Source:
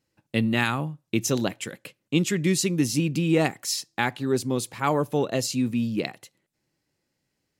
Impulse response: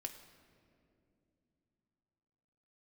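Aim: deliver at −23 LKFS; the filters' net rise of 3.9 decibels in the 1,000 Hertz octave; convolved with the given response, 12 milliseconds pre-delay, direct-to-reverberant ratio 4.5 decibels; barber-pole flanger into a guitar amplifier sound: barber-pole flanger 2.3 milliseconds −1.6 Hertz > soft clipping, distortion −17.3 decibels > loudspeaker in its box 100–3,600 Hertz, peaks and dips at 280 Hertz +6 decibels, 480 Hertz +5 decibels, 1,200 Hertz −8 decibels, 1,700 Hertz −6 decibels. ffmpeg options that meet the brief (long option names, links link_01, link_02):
-filter_complex "[0:a]equalizer=frequency=1000:width_type=o:gain=7.5,asplit=2[link_01][link_02];[1:a]atrim=start_sample=2205,adelay=12[link_03];[link_02][link_03]afir=irnorm=-1:irlink=0,volume=-1.5dB[link_04];[link_01][link_04]amix=inputs=2:normalize=0,asplit=2[link_05][link_06];[link_06]adelay=2.3,afreqshift=-1.6[link_07];[link_05][link_07]amix=inputs=2:normalize=1,asoftclip=threshold=-14.5dB,highpass=100,equalizer=frequency=280:width_type=q:width=4:gain=6,equalizer=frequency=480:width_type=q:width=4:gain=5,equalizer=frequency=1200:width_type=q:width=4:gain=-8,equalizer=frequency=1700:width_type=q:width=4:gain=-6,lowpass=frequency=3600:width=0.5412,lowpass=frequency=3600:width=1.3066,volume=3dB"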